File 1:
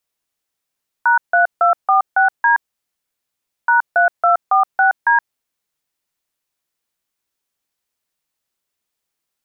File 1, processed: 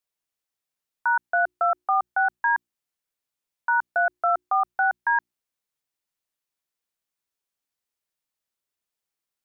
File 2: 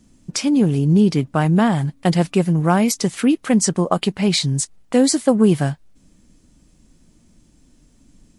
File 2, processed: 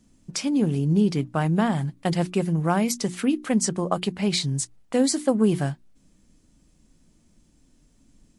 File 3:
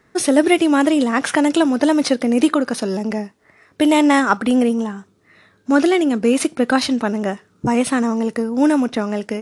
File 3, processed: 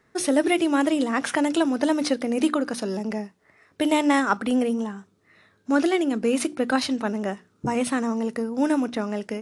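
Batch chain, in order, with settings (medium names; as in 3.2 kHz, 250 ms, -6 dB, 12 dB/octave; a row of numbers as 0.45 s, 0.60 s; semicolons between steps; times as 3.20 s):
hum notches 60/120/180/240/300/360 Hz; normalise loudness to -24 LUFS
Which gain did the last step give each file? -8.0 dB, -5.5 dB, -6.0 dB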